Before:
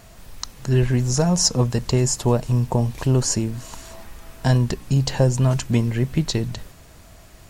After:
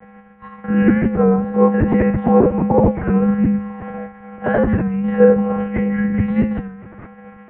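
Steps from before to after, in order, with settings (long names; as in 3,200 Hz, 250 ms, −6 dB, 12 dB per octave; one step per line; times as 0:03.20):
every overlapping window played backwards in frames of 72 ms
mains-hum notches 50/100/150/200/250/300/350/400 Hz
in parallel at +2.5 dB: brickwall limiter −17 dBFS, peak gain reduction 8 dB
on the sum: rectangular room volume 97 cubic metres, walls mixed, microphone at 4.4 metres
one-pitch LPC vocoder at 8 kHz 290 Hz
single-sideband voice off tune −85 Hz 160–2,100 Hz
wow of a warped record 33 1/3 rpm, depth 100 cents
level −6.5 dB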